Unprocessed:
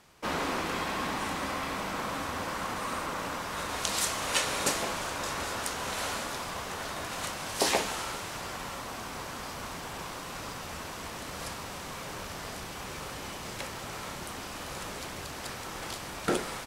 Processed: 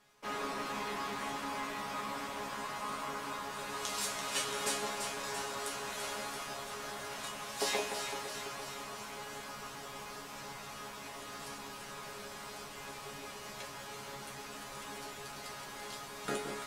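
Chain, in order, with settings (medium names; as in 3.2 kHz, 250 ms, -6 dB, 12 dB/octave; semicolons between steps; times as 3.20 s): bass shelf 220 Hz -4.5 dB; chord resonator C#3 fifth, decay 0.2 s; echo whose repeats swap between lows and highs 169 ms, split 1.6 kHz, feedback 80%, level -5 dB; trim +4 dB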